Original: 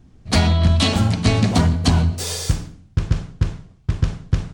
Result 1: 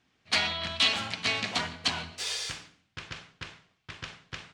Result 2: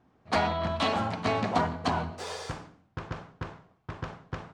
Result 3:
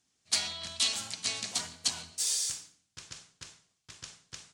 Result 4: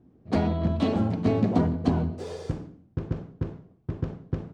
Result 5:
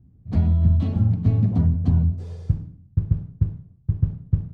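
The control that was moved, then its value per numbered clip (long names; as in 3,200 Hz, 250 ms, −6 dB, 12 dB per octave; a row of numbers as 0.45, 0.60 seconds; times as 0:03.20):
resonant band-pass, frequency: 2,600, 940, 7,700, 370, 110 Hertz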